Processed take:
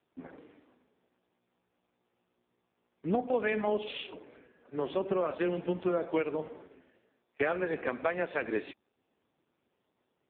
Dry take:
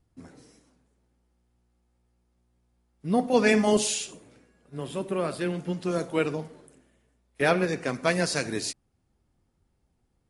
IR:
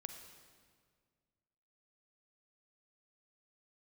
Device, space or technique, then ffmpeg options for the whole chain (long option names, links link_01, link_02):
voicemail: -af "highpass=310,lowpass=3300,acompressor=threshold=-32dB:ratio=8,volume=6.5dB" -ar 8000 -c:a libopencore_amrnb -b:a 5150